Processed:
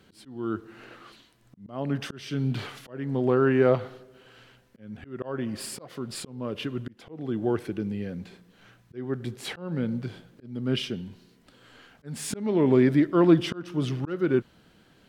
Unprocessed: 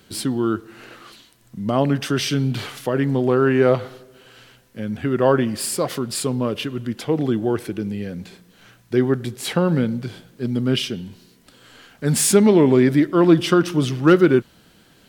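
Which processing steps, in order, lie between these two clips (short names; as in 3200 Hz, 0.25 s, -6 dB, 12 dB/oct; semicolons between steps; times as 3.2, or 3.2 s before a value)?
auto swell 0.392 s; high shelf 5000 Hz -10.5 dB; gain -4.5 dB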